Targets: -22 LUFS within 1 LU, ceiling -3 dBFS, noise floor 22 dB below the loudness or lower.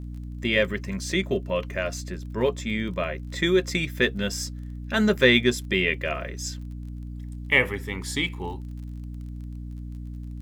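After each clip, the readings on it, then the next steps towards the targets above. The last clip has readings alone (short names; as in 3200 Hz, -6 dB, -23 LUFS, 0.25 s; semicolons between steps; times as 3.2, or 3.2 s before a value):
ticks 30/s; hum 60 Hz; harmonics up to 300 Hz; hum level -33 dBFS; loudness -25.0 LUFS; peak -4.5 dBFS; loudness target -22.0 LUFS
-> de-click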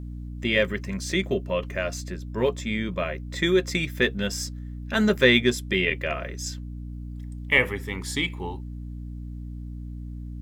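ticks 1.2/s; hum 60 Hz; harmonics up to 300 Hz; hum level -33 dBFS
-> de-hum 60 Hz, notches 5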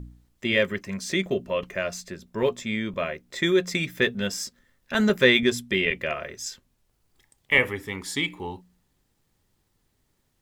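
hum none; loudness -25.0 LUFS; peak -4.5 dBFS; loudness target -22.0 LUFS
-> gain +3 dB; limiter -3 dBFS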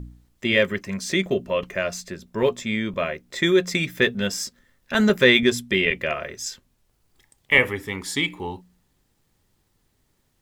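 loudness -22.5 LUFS; peak -3.0 dBFS; noise floor -68 dBFS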